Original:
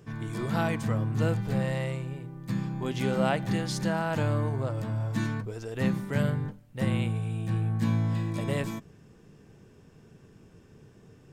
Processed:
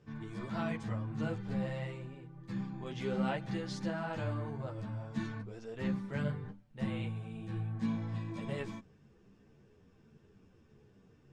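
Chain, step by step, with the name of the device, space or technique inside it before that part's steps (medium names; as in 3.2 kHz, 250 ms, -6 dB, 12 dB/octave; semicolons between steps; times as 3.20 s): string-machine ensemble chorus (three-phase chorus; low-pass 5.7 kHz 12 dB/octave); trim -5.5 dB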